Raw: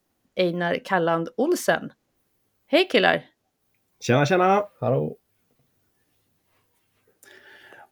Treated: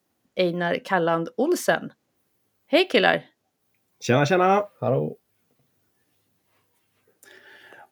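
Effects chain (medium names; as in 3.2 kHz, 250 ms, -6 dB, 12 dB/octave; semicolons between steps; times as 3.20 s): high-pass 86 Hz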